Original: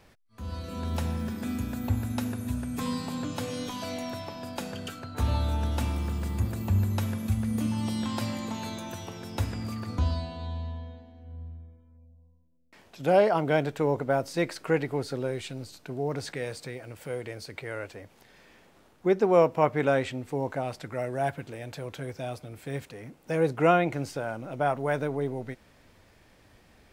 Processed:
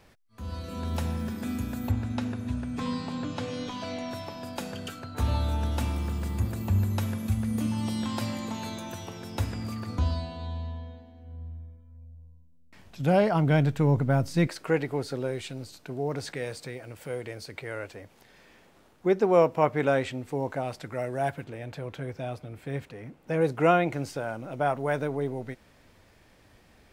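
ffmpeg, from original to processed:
-filter_complex "[0:a]asettb=1/sr,asplit=3[s0][s1][s2];[s0]atrim=end=1.914[s3];[s1]atrim=start=1.91:end=4.11,asetpts=PTS-STARTPTS,afade=t=in:d=0.004:c=qsin,afade=t=out:st=2.196:d=0.004:c=qsin,lowpass=5100[s4];[s2]atrim=start=4.106[s5];[s3][s4]acrossfade=d=0.004:c1=hsin:c2=qsin[s6];[s6][s5]acrossfade=d=0.004:c1=qsin:c2=hsin,asettb=1/sr,asplit=3[s7][s8][s9];[s7]atrim=end=11.384[s10];[s8]atrim=start=11.38:end=14.47,asetpts=PTS-STARTPTS,afade=t=in:d=0.004:c=qsin,afade=t=out:st=3.086:d=0.004:c=qsin,asubboost=boost=8:cutoff=190[s11];[s9]atrim=start=14.466[s12];[s10][s11]acrossfade=d=0.004:c1=hsin:c2=qsin[s13];[s13][s12]acrossfade=d=0.004:c1=qsin:c2=hsin,asettb=1/sr,asplit=3[s14][s15][s16];[s14]atrim=end=21.444[s17];[s15]atrim=start=21.44:end=23.41,asetpts=PTS-STARTPTS,afade=t=in:d=0.004:c=qsin,afade=t=out:st=1.966:d=0.004:c=qsin,bass=f=250:g=2,treble=f=4000:g=-8[s18];[s16]atrim=start=23.406[s19];[s17][s18]acrossfade=d=0.004:c1=hsin:c2=qsin[s20];[s20][s19]acrossfade=d=0.004:c1=qsin:c2=hsin"

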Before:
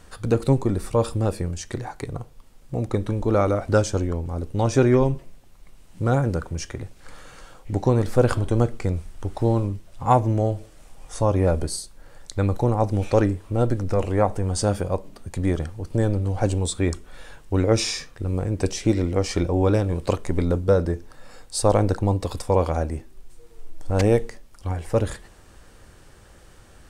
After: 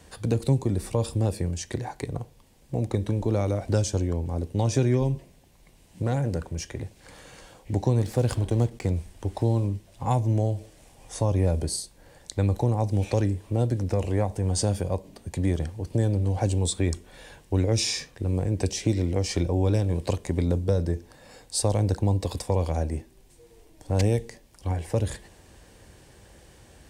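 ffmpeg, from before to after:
-filter_complex "[0:a]asettb=1/sr,asplit=3[s0][s1][s2];[s0]atrim=end=6.024[s3];[s1]atrim=start=6.02:end=6.76,asetpts=PTS-STARTPTS,afade=t=in:d=0.004:c=qsin,afade=t=out:st=0.736:d=0.004:c=qsin,aeval=exprs='(tanh(5.01*val(0)+0.45)-tanh(0.45))/5.01':c=same[s4];[s2]atrim=start=6.756[s5];[s3][s4]acrossfade=d=0.004:c1=hsin:c2=qsin[s6];[s6][s5]acrossfade=d=0.004:c1=qsin:c2=hsin,asettb=1/sr,asplit=3[s7][s8][s9];[s7]atrim=end=8.024[s10];[s8]atrim=start=8.02:end=8.91,asetpts=PTS-STARTPTS,afade=t=in:d=0.004:c=qsin,afade=t=out:st=0.886:d=0.004:c=qsin,aeval=exprs='sgn(val(0))*max(abs(val(0))-0.0112,0)':c=same[s11];[s9]atrim=start=8.906[s12];[s10][s11]acrossfade=d=0.004:c1=hsin:c2=qsin[s13];[s13][s12]acrossfade=d=0.004:c1=qsin:c2=hsin,acrossover=split=170|3000[s14][s15][s16];[s15]acompressor=threshold=0.0501:ratio=3[s17];[s14][s17][s16]amix=inputs=3:normalize=0,highpass=48,equalizer=f=1300:t=o:w=0.37:g=-10.5"

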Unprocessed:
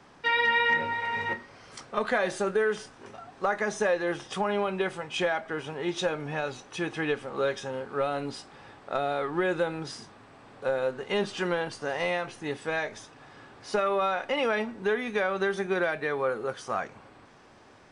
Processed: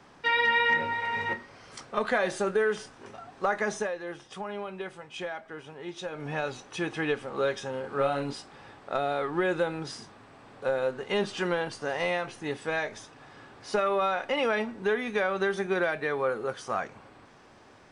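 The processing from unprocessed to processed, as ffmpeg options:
-filter_complex "[0:a]asettb=1/sr,asplit=3[s0][s1][s2];[s0]atrim=end=7.804[s3];[s1]atrim=start=7.8:end=8.33,asetpts=PTS-STARTPTS,afade=t=in:d=0.004:c=qsin,afade=t=out:st=0.526:d=0.004:c=qsin,asplit=2[s4][s5];[s5]adelay=36,volume=0.596[s6];[s4][s6]amix=inputs=2:normalize=0,atrim=end_sample=23373[s7];[s2]atrim=start=8.326[s8];[s3][s7]acrossfade=d=0.004:c1=hsin:c2=qsin[s9];[s9][s8]acrossfade=d=0.004:c1=qsin:c2=hsin,asplit=3[s10][s11][s12];[s10]atrim=end=3.9,asetpts=PTS-STARTPTS,afade=t=out:st=3.74:d=0.16:silence=0.375837[s13];[s11]atrim=start=3.9:end=6.11,asetpts=PTS-STARTPTS,volume=0.376[s14];[s12]atrim=start=6.11,asetpts=PTS-STARTPTS,afade=t=in:d=0.16:silence=0.375837[s15];[s13][s14][s15]concat=n=3:v=0:a=1"

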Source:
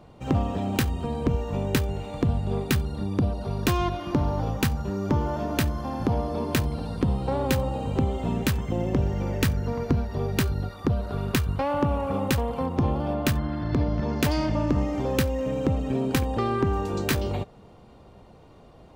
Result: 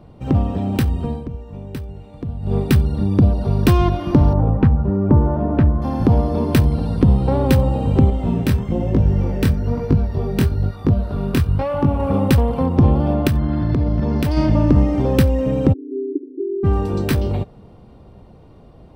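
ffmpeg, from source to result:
-filter_complex "[0:a]asettb=1/sr,asplit=3[s0][s1][s2];[s0]atrim=end=4.334[s3];[s1]atrim=start=4.33:end=5.82,asetpts=PTS-STARTPTS,afade=t=in:d=0.004:c=qsin,afade=t=out:st=1.486:d=0.004:c=qsin,lowpass=1300[s4];[s2]atrim=start=5.816[s5];[s3][s4]acrossfade=d=0.004:c1=hsin:c2=qsin[s6];[s6][s5]acrossfade=d=0.004:c1=qsin:c2=hsin,asettb=1/sr,asplit=3[s7][s8][s9];[s7]atrim=end=8.104[s10];[s8]atrim=start=8.1:end=12,asetpts=PTS-STARTPTS,afade=t=in:d=0.004:c=qsin,afade=t=out:st=3.896:d=0.004:c=qsin,flanger=delay=19:depth=6.6:speed=1.1[s11];[s9]atrim=start=11.996[s12];[s10][s11]acrossfade=d=0.004:c1=hsin:c2=qsin[s13];[s13][s12]acrossfade=d=0.004:c1=qsin:c2=hsin,asettb=1/sr,asplit=3[s14][s15][s16];[s14]atrim=end=13.274[s17];[s15]atrim=start=13.27:end=14.37,asetpts=PTS-STARTPTS,afade=t=in:d=0.004:c=qsin,afade=t=out:st=1.096:d=0.004:c=qsin,acompressor=threshold=0.0631:ratio=6:attack=3.2:release=140:knee=1:detection=peak[s18];[s16]atrim=start=14.366[s19];[s17][s18]acrossfade=d=0.004:c1=hsin:c2=qsin[s20];[s20][s19]acrossfade=d=0.004:c1=qsin:c2=hsin,asplit=3[s21][s22][s23];[s21]afade=t=out:st=15.72:d=0.02[s24];[s22]asuperpass=centerf=340:order=12:qfactor=2.5,afade=t=in:st=15.72:d=0.02,afade=t=out:st=16.63:d=0.02[s25];[s23]afade=t=in:st=16.63:d=0.02[s26];[s24][s25][s26]amix=inputs=3:normalize=0,asplit=3[s27][s28][s29];[s27]atrim=end=1.26,asetpts=PTS-STARTPTS,afade=t=out:st=1.09:d=0.17:silence=0.237137[s30];[s28]atrim=start=1.26:end=2.39,asetpts=PTS-STARTPTS,volume=0.237[s31];[s29]atrim=start=2.39,asetpts=PTS-STARTPTS,afade=t=in:d=0.17:silence=0.237137[s32];[s30][s31][s32]concat=n=3:v=0:a=1,lowshelf=f=450:g=9.5,bandreject=f=6800:w=5.2,dynaudnorm=f=240:g=21:m=3.76,volume=0.891"

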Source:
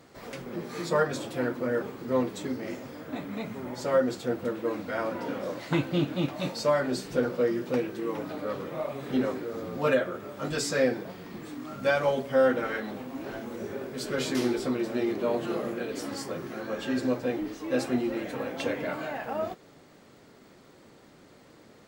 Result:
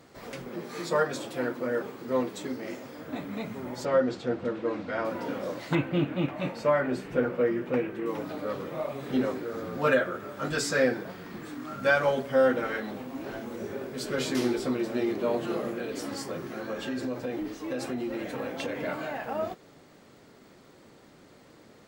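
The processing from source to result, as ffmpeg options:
-filter_complex "[0:a]asettb=1/sr,asplit=3[s0][s1][s2];[s0]atrim=end=0.484[s3];[s1]atrim=start=0.48:end=2.99,asetpts=PTS-STARTPTS,afade=t=in:d=0.004:c=qsin,afade=t=out:st=2.506:d=0.004:c=qsin,lowshelf=f=140:g=-9.5[s4];[s2]atrim=start=2.986[s5];[s3][s4]acrossfade=d=0.004:c1=hsin:c2=qsin[s6];[s6][s5]acrossfade=d=0.004:c1=qsin:c2=hsin,asettb=1/sr,asplit=3[s7][s8][s9];[s7]atrim=end=3.854[s10];[s8]atrim=start=3.85:end=5.05,asetpts=PTS-STARTPTS,afade=t=in:d=0.004:c=qsin,afade=t=out:st=1.196:d=0.004:c=qsin,lowpass=4800[s11];[s9]atrim=start=5.046[s12];[s10][s11]acrossfade=d=0.004:c1=hsin:c2=qsin[s13];[s13][s12]acrossfade=d=0.004:c1=qsin:c2=hsin,asettb=1/sr,asplit=3[s14][s15][s16];[s14]atrim=end=5.754[s17];[s15]atrim=start=5.75:end=8.06,asetpts=PTS-STARTPTS,afade=t=in:d=0.004:c=qsin,afade=t=out:st=2.306:d=0.004:c=qsin,highshelf=f=3300:t=q:w=1.5:g=-10[s18];[s16]atrim=start=8.056[s19];[s17][s18]acrossfade=d=0.004:c1=hsin:c2=qsin[s20];[s20][s19]acrossfade=d=0.004:c1=qsin:c2=hsin,asettb=1/sr,asplit=3[s21][s22][s23];[s21]atrim=end=9.454[s24];[s22]atrim=start=9.45:end=12.31,asetpts=PTS-STARTPTS,afade=t=in:d=0.004:c=qsin,afade=t=out:st=2.856:d=0.004:c=qsin,equalizer=f=1500:t=o:w=0.62:g=5.5[s25];[s23]atrim=start=12.306[s26];[s24][s25]acrossfade=d=0.004:c1=hsin:c2=qsin[s27];[s27][s26]acrossfade=d=0.004:c1=qsin:c2=hsin,asettb=1/sr,asplit=3[s28][s29][s30];[s28]atrim=end=15.694[s31];[s29]atrim=start=15.69:end=18.76,asetpts=PTS-STARTPTS,afade=t=in:d=0.004:c=qsin,afade=t=out:st=3.066:d=0.004:c=qsin,acompressor=threshold=0.0398:ratio=6:attack=3.2:release=140:knee=1:detection=peak[s32];[s30]atrim=start=18.756[s33];[s31][s32]acrossfade=d=0.004:c1=hsin:c2=qsin[s34];[s34][s33]acrossfade=d=0.004:c1=qsin:c2=hsin"

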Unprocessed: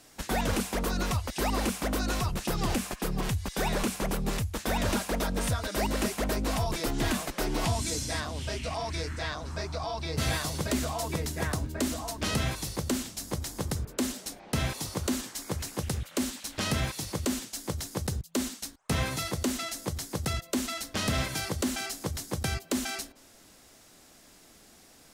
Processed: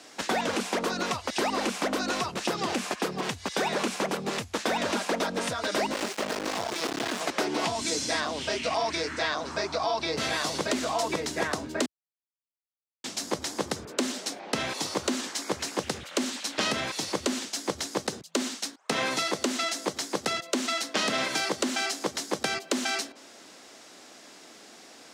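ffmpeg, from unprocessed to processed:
-filter_complex "[0:a]asettb=1/sr,asplit=3[s0][s1][s2];[s0]atrim=end=5.934[s3];[s1]atrim=start=5.93:end=7.21,asetpts=PTS-STARTPTS,afade=t=in:d=0.004:c=qsin,afade=t=out:st=1.276:d=0.004:c=qsin,acrusher=bits=3:dc=4:mix=0:aa=0.000001[s4];[s2]atrim=start=7.206[s5];[s3][s4]acrossfade=d=0.004:c1=hsin:c2=qsin[s6];[s6][s5]acrossfade=d=0.004:c1=qsin:c2=hsin,asettb=1/sr,asplit=3[s7][s8][s9];[s7]atrim=end=18.014[s10];[s8]atrim=start=18.01:end=22.81,asetpts=PTS-STARTPTS,afade=t=in:d=0.004:c=qsin,afade=t=out:st=4.796:d=0.004:c=qsin,highpass=150[s11];[s9]atrim=start=22.806[s12];[s10][s11]acrossfade=d=0.004:c1=hsin:c2=qsin[s13];[s13][s12]acrossfade=d=0.004:c1=qsin:c2=hsin,asplit=3[s14][s15][s16];[s14]atrim=end=11.86,asetpts=PTS-STARTPTS,afade=t=out:st=11.856:d=0.004:c=hsin[s17];[s15]atrim=start=11.86:end=13.04,asetpts=PTS-STARTPTS,volume=0[s18];[s16]atrim=start=13.04,asetpts=PTS-STARTPTS,afade=t=in:d=0.004:c=hsin[s19];[s17][s18][s19]concat=n=3:v=0:a=1,acompressor=threshold=0.0316:ratio=6,highpass=f=65:w=0.5412,highpass=f=65:w=1.3066,acrossover=split=220 7700:gain=0.0794 1 0.141[s20][s21][s22];[s20][s21][s22]amix=inputs=3:normalize=0,volume=2.66"

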